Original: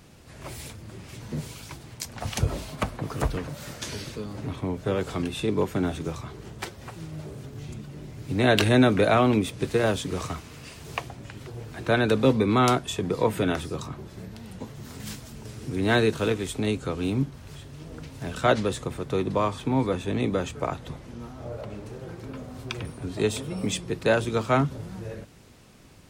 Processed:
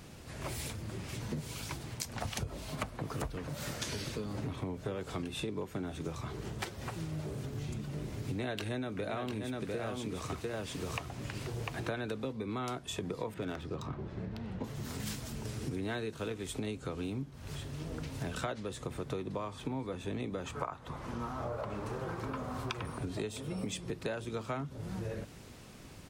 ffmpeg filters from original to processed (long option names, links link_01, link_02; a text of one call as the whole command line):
ffmpeg -i in.wav -filter_complex "[0:a]asplit=3[link_01][link_02][link_03];[link_01]afade=type=out:start_time=7.92:duration=0.02[link_04];[link_02]aecho=1:1:699:0.473,afade=type=in:start_time=7.92:duration=0.02,afade=type=out:start_time=12.24:duration=0.02[link_05];[link_03]afade=type=in:start_time=12.24:duration=0.02[link_06];[link_04][link_05][link_06]amix=inputs=3:normalize=0,asettb=1/sr,asplit=3[link_07][link_08][link_09];[link_07]atrim=end=13.344[link_10];[link_08]atrim=start=13.34:end=14.64,asetpts=PTS-STARTPTS,afade=type=in:duration=0.004:curve=qsin,afade=type=out:start_time=1.296:duration=0.004:curve=qsin,adynamicsmooth=sensitivity=7.5:basefreq=2300[link_11];[link_09]atrim=start=14.636[link_12];[link_10][link_11]acrossfade=duration=0.004:curve1=hsin:curve2=qsin[link_13];[link_13][link_12]acrossfade=duration=0.004:curve1=qsin:curve2=hsin,asettb=1/sr,asplit=3[link_14][link_15][link_16];[link_14]atrim=end=20.454[link_17];[link_15]atrim=start=20.45:end=22.99,asetpts=PTS-STARTPTS,afade=type=in:duration=0.004:curve=qsin,afade=type=out:start_time=2.536:duration=0.004:curve=qsin,equalizer=frequency=1100:width_type=o:width=1.1:gain=12[link_18];[link_16]atrim=start=22.986[link_19];[link_17][link_18]acrossfade=duration=0.004:curve1=hsin:curve2=qsin[link_20];[link_20][link_19]acrossfade=duration=0.004:curve1=qsin:curve2=hsin,acompressor=threshold=-35dB:ratio=12,volume=1dB" out.wav